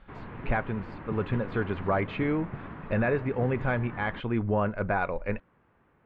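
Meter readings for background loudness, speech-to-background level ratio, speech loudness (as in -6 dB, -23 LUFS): -41.5 LUFS, 11.5 dB, -30.0 LUFS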